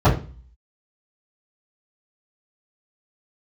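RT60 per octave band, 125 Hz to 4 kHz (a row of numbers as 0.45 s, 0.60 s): 0.55 s, 0.45 s, 0.40 s, 0.35 s, 0.35 s, 0.35 s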